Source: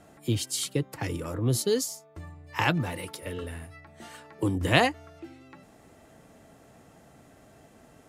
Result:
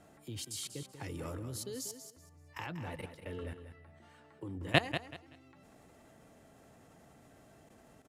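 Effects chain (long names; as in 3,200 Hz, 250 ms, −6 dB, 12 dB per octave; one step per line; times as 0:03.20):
0:02.66–0:04.69: high-shelf EQ 4,700 Hz −12 dB
output level in coarse steps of 19 dB
repeating echo 190 ms, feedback 24%, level −10 dB
level −3.5 dB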